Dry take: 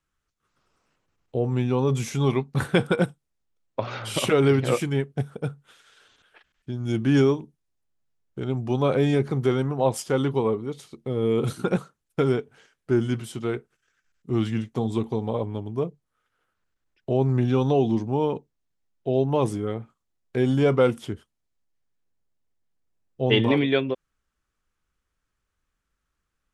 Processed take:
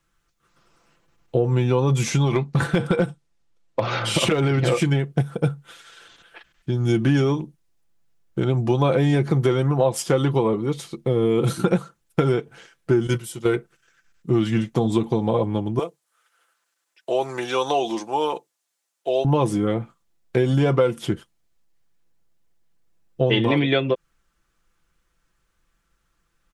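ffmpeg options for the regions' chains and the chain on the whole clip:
-filter_complex "[0:a]asettb=1/sr,asplit=3[s0][s1][s2];[s0]atrim=end=2.034[s3];[s1]atrim=start=2.03:end=5.06,asetpts=PTS-STARTPTS,afade=t=in:d=0.004:c=qsin,afade=t=out:st=3.026:d=0.004:c=qsin,lowpass=8200,acompressor=threshold=0.0891:ratio=8:attack=3.2:release=140:knee=1:detection=peak,asoftclip=type=hard:threshold=0.126[s4];[s2]atrim=start=5.056[s5];[s3][s4]acrossfade=d=0.004:c1=hsin:c2=qsin[s6];[s6][s5]acrossfade=d=0.004:c1=qsin:c2=hsin,asettb=1/sr,asplit=3[s7][s8][s9];[s7]atrim=end=13.074[s10];[s8]atrim=start=13.07:end=13.56,asetpts=PTS-STARTPTS,afade=t=in:d=0.004:c=qsin,afade=t=out:st=0.486:d=0.004:c=qsin,agate=range=0.282:threshold=0.0355:ratio=16:release=100:detection=peak,highshelf=f=6500:g=12,aecho=1:1:2.1:0.33,atrim=end_sample=21609[s11];[s9]atrim=start=13.556[s12];[s10][s11]acrossfade=d=0.004:c1=hsin:c2=qsin[s13];[s13][s12]acrossfade=d=0.004:c1=qsin:c2=hsin,asettb=1/sr,asplit=3[s14][s15][s16];[s14]atrim=end=15.794[s17];[s15]atrim=start=15.79:end=19.25,asetpts=PTS-STARTPTS,afade=t=in:d=0.004:c=qsin,afade=t=out:st=3.456:d=0.004:c=qsin,highpass=640,equalizer=f=8800:t=o:w=1.4:g=9[s18];[s16]atrim=start=19.246[s19];[s17][s18]acrossfade=d=0.004:c1=hsin:c2=qsin[s20];[s20][s19]acrossfade=d=0.004:c1=qsin:c2=hsin,aecho=1:1:5.9:0.48,acompressor=threshold=0.0631:ratio=6,volume=2.66"

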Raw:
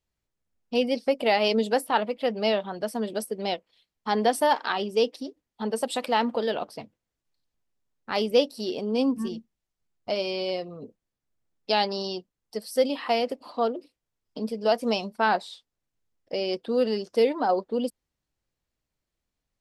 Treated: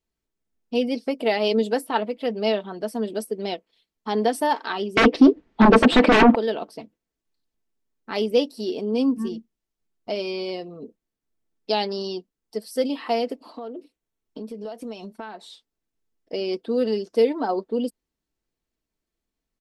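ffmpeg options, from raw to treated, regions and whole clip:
-filter_complex "[0:a]asettb=1/sr,asplit=3[s0][s1][s2];[s0]atrim=end=4.974[s3];[s1]atrim=start=4.97:end=6.35,asetpts=PTS-STARTPTS,afade=t=in:d=0.004:c=qsin,afade=t=out:st=1.376:d=0.004:c=qsin,aeval=exprs='0.335*sin(PI/2*8.91*val(0)/0.335)':c=same,lowpass=2400[s4];[s2]atrim=start=6.346[s5];[s3][s4]acrossfade=d=0.004:c1=hsin:c2=qsin[s6];[s6][s5]acrossfade=d=0.004:c1=qsin:c2=hsin,asettb=1/sr,asplit=3[s7][s8][s9];[s7]atrim=end=13.574[s10];[s8]atrim=start=13.57:end=15.5,asetpts=PTS-STARTPTS,afade=t=in:d=0.004:c=qsin,afade=t=out:st=1.926:d=0.004:c=qsin,bandreject=f=4900:w=7.2,acompressor=threshold=0.0224:ratio=8:attack=3.2:release=140:knee=1:detection=peak[s11];[s9]atrim=start=15.496[s12];[s10][s11]acrossfade=d=0.004:c1=hsin:c2=qsin[s13];[s13][s12]acrossfade=d=0.004:c1=qsin:c2=hsin,equalizer=f=330:w=3.1:g=10.5,aecho=1:1:4.5:0.41,volume=0.794"

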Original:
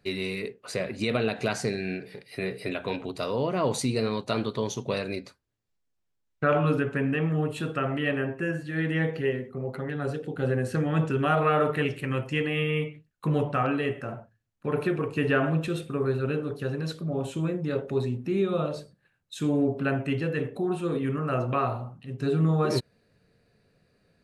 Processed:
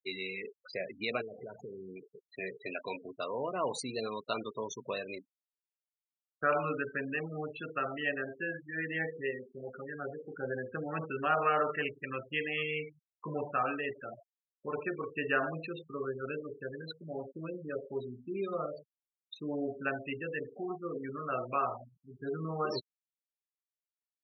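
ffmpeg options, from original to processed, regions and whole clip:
-filter_complex "[0:a]asettb=1/sr,asplit=3[s0][s1][s2];[s0]atrim=end=1.214[s3];[s1]atrim=start=1.21:end=1.97,asetpts=PTS-STARTPTS,afade=t=in:d=0.004:c=qsin,afade=t=out:st=0.756:d=0.004:c=qsin,tiltshelf=f=850:g=7.5,aecho=1:1:2.1:0.34,atrim=end_sample=33516,acompressor=threshold=0.0355:ratio=10:attack=3.2:release=140:knee=1:detection=peak[s4];[s2]atrim=start=1.966[s5];[s3][s4]acrossfade=d=0.004:c1=hsin:c2=qsin[s6];[s6][s5]acrossfade=d=0.004:c1=qsin:c2=hsin,afftfilt=real='re*gte(hypot(re,im),0.0355)':imag='im*gte(hypot(re,im),0.0355)':win_size=1024:overlap=0.75,highpass=f=1100:p=1,highshelf=f=4200:g=-7.5"

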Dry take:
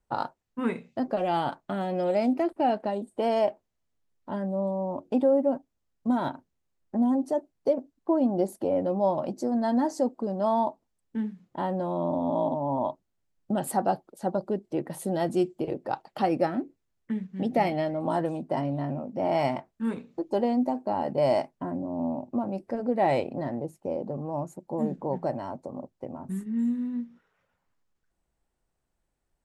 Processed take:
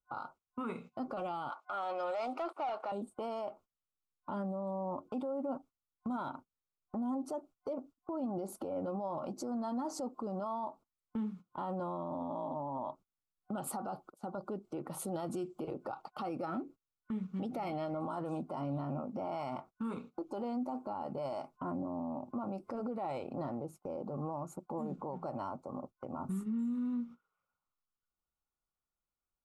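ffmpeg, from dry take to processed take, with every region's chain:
-filter_complex "[0:a]asettb=1/sr,asplit=3[s0][s1][s2];[s0]atrim=end=1.504[s3];[s1]atrim=start=1.5:end=2.92,asetpts=PTS-STARTPTS,afade=t=in:d=0.004:c=qsin,afade=t=out:st=1.416:d=0.004:c=qsin,highpass=530,highshelf=f=9200:g=-9.5,asplit=2[s4][s5];[s5]highpass=f=720:p=1,volume=4.47,asoftclip=type=tanh:threshold=0.141[s6];[s4][s6]amix=inputs=2:normalize=0,lowpass=f=6100:p=1,volume=0.501[s7];[s2]atrim=start=2.916[s8];[s3][s7]acrossfade=d=0.004:c1=hsin:c2=qsin[s9];[s9][s8]acrossfade=d=0.004:c1=qsin:c2=hsin,agate=range=0.126:threshold=0.00631:ratio=16:detection=peak,superequalizer=9b=1.58:10b=3.16:11b=0.398,alimiter=level_in=2.11:limit=0.0631:level=0:latency=1:release=124,volume=0.473"

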